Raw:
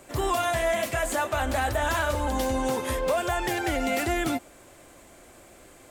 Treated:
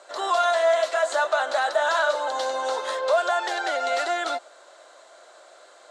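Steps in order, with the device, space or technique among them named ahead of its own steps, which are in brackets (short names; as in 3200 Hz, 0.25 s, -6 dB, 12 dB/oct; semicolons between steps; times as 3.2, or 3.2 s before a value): phone speaker on a table (speaker cabinet 470–7600 Hz, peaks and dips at 630 Hz +7 dB, 990 Hz +3 dB, 1400 Hz +8 dB, 2400 Hz -7 dB, 4000 Hz +10 dB)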